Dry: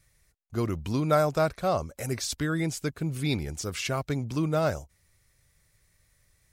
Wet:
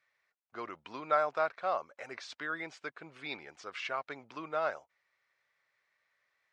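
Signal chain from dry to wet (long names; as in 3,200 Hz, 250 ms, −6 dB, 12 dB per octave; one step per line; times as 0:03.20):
high-pass filter 1,100 Hz 12 dB per octave
head-to-tape spacing loss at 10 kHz 42 dB
level +6 dB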